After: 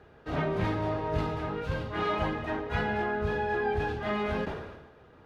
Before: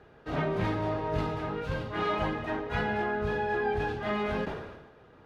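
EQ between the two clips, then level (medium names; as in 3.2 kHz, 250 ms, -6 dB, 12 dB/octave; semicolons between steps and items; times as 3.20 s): peaking EQ 75 Hz +6 dB 0.38 oct; 0.0 dB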